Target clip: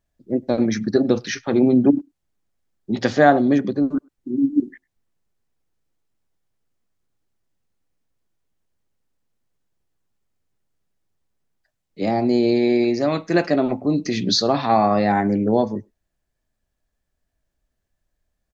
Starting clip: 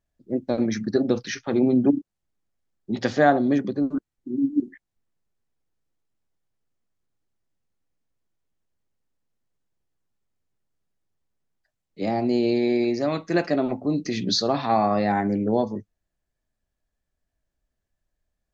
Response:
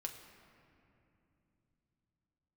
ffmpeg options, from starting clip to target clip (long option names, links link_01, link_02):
-filter_complex "[0:a]asettb=1/sr,asplit=3[link_01][link_02][link_03];[link_01]atrim=end=12.114[link_04];[link_02]atrim=start=12.11:end=12.56,asetpts=PTS-STARTPTS,afade=type=in:duration=0.004:curve=qsin,afade=type=out:start_time=0.446:duration=0.004:curve=qsin,bandreject=frequency=2800:width=7.3[link_05];[link_03]atrim=start=12.556[link_06];[link_04][link_05]acrossfade=duration=0.004:curve1=hsin:curve2=qsin[link_07];[link_07][link_06]acrossfade=duration=0.004:curve1=qsin:curve2=hsin,asplit=2[link_08][link_09];[link_09]adelay=100,highpass=300,lowpass=3400,asoftclip=type=hard:threshold=-14.5dB,volume=-29dB[link_10];[link_08][link_10]amix=inputs=2:normalize=0,volume=4dB"